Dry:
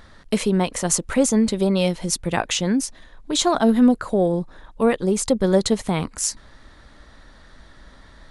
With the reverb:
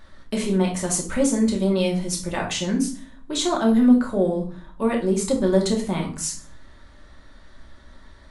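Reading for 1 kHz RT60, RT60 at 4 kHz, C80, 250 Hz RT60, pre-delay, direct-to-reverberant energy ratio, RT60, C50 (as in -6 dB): 0.40 s, 0.30 s, 14.0 dB, 0.70 s, 3 ms, -1.0 dB, 0.40 s, 8.5 dB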